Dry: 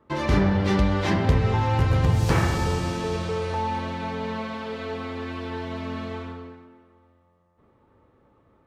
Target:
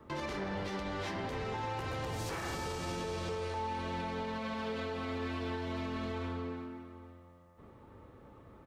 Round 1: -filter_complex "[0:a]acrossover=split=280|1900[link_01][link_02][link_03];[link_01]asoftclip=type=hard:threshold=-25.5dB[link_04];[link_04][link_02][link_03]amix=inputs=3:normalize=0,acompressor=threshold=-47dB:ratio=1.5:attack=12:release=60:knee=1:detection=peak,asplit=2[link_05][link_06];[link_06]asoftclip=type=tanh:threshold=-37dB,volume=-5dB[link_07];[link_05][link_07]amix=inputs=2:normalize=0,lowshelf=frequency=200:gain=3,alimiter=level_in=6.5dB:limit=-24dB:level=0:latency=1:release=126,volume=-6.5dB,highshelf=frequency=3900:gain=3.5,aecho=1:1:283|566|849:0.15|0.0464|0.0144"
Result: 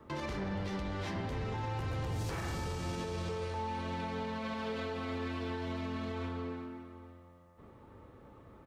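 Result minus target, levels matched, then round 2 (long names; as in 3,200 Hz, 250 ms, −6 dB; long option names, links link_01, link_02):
hard clipping: distortion −5 dB
-filter_complex "[0:a]acrossover=split=280|1900[link_01][link_02][link_03];[link_01]asoftclip=type=hard:threshold=-35dB[link_04];[link_04][link_02][link_03]amix=inputs=3:normalize=0,acompressor=threshold=-47dB:ratio=1.5:attack=12:release=60:knee=1:detection=peak,asplit=2[link_05][link_06];[link_06]asoftclip=type=tanh:threshold=-37dB,volume=-5dB[link_07];[link_05][link_07]amix=inputs=2:normalize=0,lowshelf=frequency=200:gain=3,alimiter=level_in=6.5dB:limit=-24dB:level=0:latency=1:release=126,volume=-6.5dB,highshelf=frequency=3900:gain=3.5,aecho=1:1:283|566|849:0.15|0.0464|0.0144"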